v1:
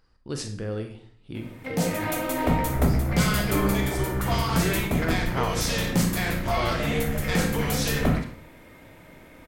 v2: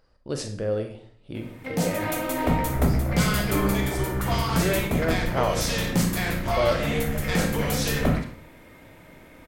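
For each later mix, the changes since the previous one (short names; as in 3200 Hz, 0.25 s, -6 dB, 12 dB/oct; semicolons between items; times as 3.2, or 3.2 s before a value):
speech: add bell 580 Hz +11.5 dB 0.56 oct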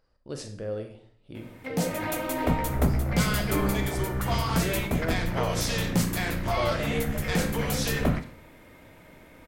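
speech -6.5 dB; background: send -7.5 dB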